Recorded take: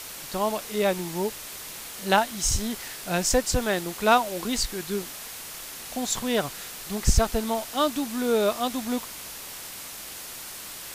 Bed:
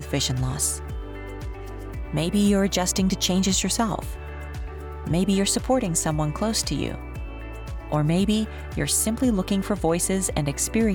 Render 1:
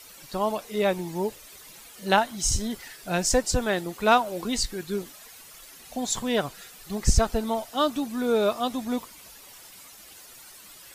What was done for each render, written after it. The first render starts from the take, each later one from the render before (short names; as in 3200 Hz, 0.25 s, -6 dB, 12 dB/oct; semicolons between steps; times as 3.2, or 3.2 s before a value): denoiser 12 dB, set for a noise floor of -39 dBFS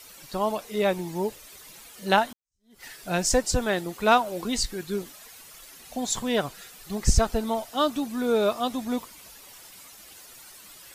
2.33–2.84 fade in exponential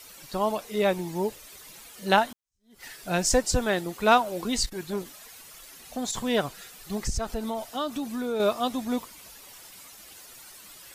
4.66–6.15 core saturation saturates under 670 Hz; 7.01–8.4 compressor 2.5:1, threshold -28 dBFS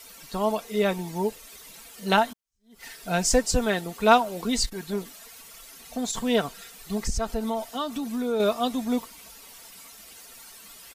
notch 1700 Hz, Q 28; comb 4.4 ms, depth 44%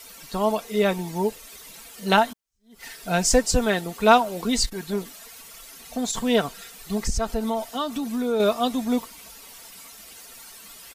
gain +2.5 dB; limiter -3 dBFS, peak gain reduction 1.5 dB